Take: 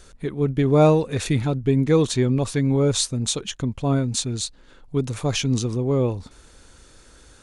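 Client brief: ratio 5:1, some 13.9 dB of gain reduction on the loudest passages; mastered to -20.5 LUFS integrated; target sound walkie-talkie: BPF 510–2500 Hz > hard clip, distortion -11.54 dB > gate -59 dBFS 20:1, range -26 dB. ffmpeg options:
-af "acompressor=threshold=-27dB:ratio=5,highpass=510,lowpass=2.5k,asoftclip=type=hard:threshold=-33.5dB,agate=range=-26dB:threshold=-59dB:ratio=20,volume=20.5dB"

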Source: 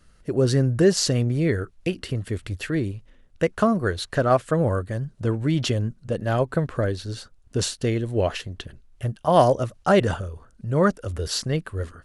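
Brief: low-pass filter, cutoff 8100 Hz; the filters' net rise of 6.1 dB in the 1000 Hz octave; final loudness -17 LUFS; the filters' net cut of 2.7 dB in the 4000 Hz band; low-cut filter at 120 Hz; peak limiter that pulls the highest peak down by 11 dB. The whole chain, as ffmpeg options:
-af "highpass=120,lowpass=8.1k,equalizer=f=1k:t=o:g=8.5,equalizer=f=4k:t=o:g=-3.5,volume=8.5dB,alimiter=limit=-2.5dB:level=0:latency=1"

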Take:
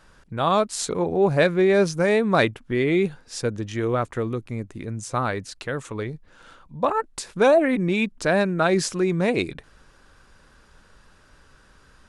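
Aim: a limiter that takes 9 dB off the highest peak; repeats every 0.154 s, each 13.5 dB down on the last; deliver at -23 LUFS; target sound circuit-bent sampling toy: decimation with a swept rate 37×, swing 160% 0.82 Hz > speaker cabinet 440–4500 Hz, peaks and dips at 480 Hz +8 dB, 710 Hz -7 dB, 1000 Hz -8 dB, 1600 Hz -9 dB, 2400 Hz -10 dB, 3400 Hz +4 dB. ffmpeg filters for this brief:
-af "alimiter=limit=-15dB:level=0:latency=1,aecho=1:1:154|308:0.211|0.0444,acrusher=samples=37:mix=1:aa=0.000001:lfo=1:lforange=59.2:lforate=0.82,highpass=440,equalizer=f=480:t=q:w=4:g=8,equalizer=f=710:t=q:w=4:g=-7,equalizer=f=1k:t=q:w=4:g=-8,equalizer=f=1.6k:t=q:w=4:g=-9,equalizer=f=2.4k:t=q:w=4:g=-10,equalizer=f=3.4k:t=q:w=4:g=4,lowpass=f=4.5k:w=0.5412,lowpass=f=4.5k:w=1.3066,volume=6dB"

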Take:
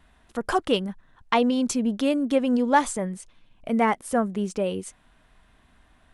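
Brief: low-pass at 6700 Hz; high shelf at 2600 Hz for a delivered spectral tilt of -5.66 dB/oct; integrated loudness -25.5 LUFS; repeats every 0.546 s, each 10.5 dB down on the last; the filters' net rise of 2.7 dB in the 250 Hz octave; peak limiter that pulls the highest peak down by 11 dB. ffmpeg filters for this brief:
-af "lowpass=6.7k,equalizer=f=250:t=o:g=3,highshelf=f=2.6k:g=-4,alimiter=limit=-17dB:level=0:latency=1,aecho=1:1:546|1092|1638:0.299|0.0896|0.0269,volume=1.5dB"

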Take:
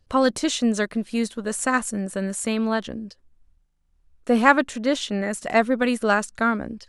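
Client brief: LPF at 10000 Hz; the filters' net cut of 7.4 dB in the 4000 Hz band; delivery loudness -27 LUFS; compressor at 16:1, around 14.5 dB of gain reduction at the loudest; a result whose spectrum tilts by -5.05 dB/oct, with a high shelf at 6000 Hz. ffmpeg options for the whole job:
-af "lowpass=10k,equalizer=f=4k:t=o:g=-7,highshelf=f=6k:g=-8,acompressor=threshold=-24dB:ratio=16,volume=3.5dB"

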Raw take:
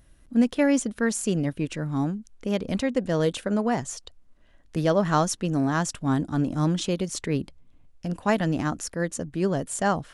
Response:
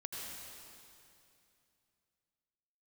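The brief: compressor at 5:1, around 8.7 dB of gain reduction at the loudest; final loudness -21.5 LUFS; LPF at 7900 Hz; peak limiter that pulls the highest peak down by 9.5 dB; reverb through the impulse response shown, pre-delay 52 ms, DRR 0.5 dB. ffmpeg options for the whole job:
-filter_complex "[0:a]lowpass=7.9k,acompressor=threshold=-26dB:ratio=5,alimiter=level_in=1dB:limit=-24dB:level=0:latency=1,volume=-1dB,asplit=2[a][b];[1:a]atrim=start_sample=2205,adelay=52[c];[b][c]afir=irnorm=-1:irlink=0,volume=-0.5dB[d];[a][d]amix=inputs=2:normalize=0,volume=11dB"

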